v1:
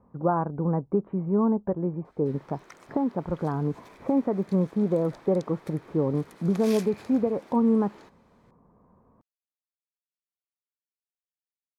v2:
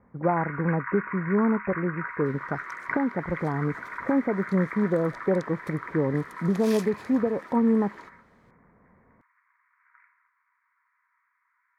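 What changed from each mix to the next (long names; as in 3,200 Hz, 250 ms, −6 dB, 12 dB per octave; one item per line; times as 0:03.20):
first sound: unmuted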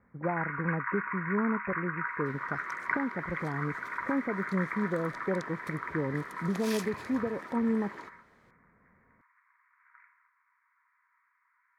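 speech −9.0 dB
master: add low-shelf EQ 400 Hz +3 dB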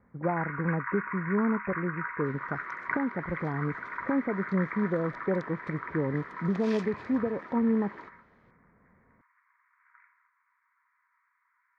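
speech +3.0 dB
second sound: add high-shelf EQ 6,200 Hz −5.5 dB
master: add high-frequency loss of the air 140 metres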